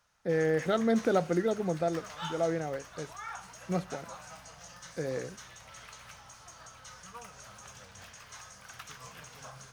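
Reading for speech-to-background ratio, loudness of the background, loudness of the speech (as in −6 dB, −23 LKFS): 15.5 dB, −46.5 LKFS, −31.0 LKFS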